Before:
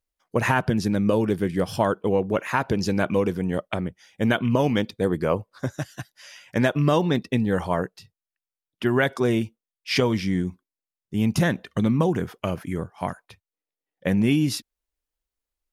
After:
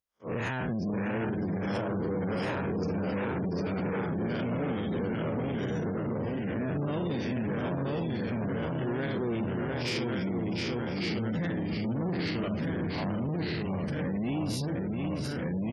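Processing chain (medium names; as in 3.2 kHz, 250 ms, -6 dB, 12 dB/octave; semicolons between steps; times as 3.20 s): spectral blur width 130 ms; compression 2.5:1, threshold -31 dBFS, peak gain reduction 9 dB; ever faster or slower copies 567 ms, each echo -1 st, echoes 3; delay 704 ms -7 dB; dynamic bell 930 Hz, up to -5 dB, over -46 dBFS, Q 1.1; peak limiter -25 dBFS, peak gain reduction 9 dB; 5.82–6.90 s: low-pass 1.2 kHz -> 2.7 kHz 6 dB/octave; waveshaping leveller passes 2; high-pass 100 Hz 6 dB/octave; spectral gate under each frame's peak -30 dB strong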